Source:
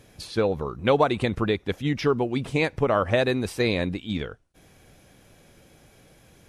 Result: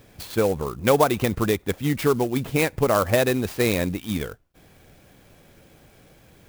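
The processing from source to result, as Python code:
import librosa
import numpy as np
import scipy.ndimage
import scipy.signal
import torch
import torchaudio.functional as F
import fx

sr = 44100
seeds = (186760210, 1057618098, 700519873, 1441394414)

y = fx.clock_jitter(x, sr, seeds[0], jitter_ms=0.038)
y = y * 10.0 ** (2.0 / 20.0)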